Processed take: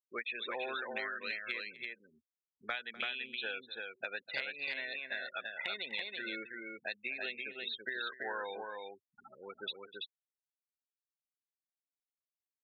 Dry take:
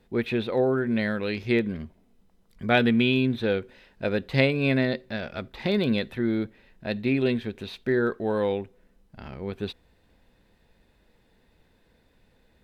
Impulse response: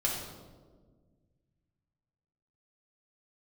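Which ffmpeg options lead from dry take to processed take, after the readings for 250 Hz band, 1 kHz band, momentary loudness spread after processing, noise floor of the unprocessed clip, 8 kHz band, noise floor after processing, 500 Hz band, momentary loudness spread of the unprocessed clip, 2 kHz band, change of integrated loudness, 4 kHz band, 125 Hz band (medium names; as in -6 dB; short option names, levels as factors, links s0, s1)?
-28.5 dB, -9.5 dB, 8 LU, -64 dBFS, no reading, under -85 dBFS, -19.5 dB, 14 LU, -6.5 dB, -13.5 dB, -6.0 dB, under -35 dB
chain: -filter_complex "[0:a]afftfilt=real='re*gte(hypot(re,im),0.0282)':imag='im*gte(hypot(re,im),0.0282)':win_size=1024:overlap=0.75,highpass=1400,acompressor=threshold=0.00708:ratio=10,asplit=2[s0][s1];[s1]aecho=0:1:250|334:0.133|0.668[s2];[s0][s2]amix=inputs=2:normalize=0,volume=2.11"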